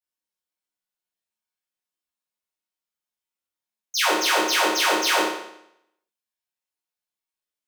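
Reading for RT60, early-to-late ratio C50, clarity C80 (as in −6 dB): 0.75 s, 2.0 dB, 5.0 dB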